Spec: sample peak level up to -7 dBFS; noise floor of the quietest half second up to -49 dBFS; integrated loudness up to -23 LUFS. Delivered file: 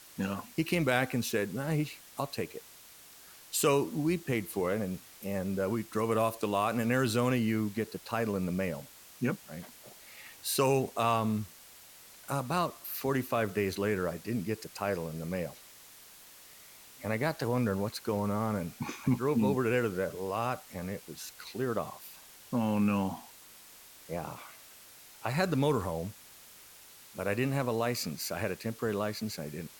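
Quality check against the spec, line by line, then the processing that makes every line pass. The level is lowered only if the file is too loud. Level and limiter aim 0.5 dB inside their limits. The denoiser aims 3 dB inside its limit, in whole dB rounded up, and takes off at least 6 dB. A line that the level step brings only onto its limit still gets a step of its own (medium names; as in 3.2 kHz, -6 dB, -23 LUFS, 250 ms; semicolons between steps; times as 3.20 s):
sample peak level -12.5 dBFS: pass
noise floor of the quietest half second -54 dBFS: pass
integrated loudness -32.5 LUFS: pass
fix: none needed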